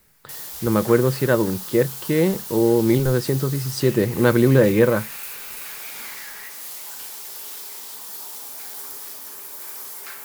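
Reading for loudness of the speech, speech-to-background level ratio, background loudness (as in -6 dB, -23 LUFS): -19.5 LUFS, 12.5 dB, -32.0 LUFS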